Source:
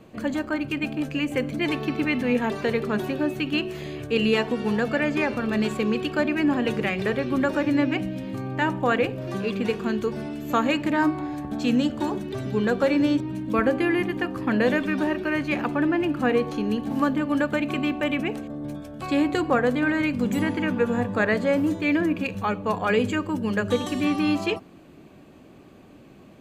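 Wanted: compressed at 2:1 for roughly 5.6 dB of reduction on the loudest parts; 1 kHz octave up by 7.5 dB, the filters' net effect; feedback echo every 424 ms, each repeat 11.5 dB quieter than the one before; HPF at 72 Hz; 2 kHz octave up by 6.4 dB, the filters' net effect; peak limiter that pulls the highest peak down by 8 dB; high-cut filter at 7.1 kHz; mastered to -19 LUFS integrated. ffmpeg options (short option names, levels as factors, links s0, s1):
-af "highpass=72,lowpass=7100,equalizer=f=1000:t=o:g=8,equalizer=f=2000:t=o:g=5.5,acompressor=threshold=0.0794:ratio=2,alimiter=limit=0.15:level=0:latency=1,aecho=1:1:424|848|1272:0.266|0.0718|0.0194,volume=2.37"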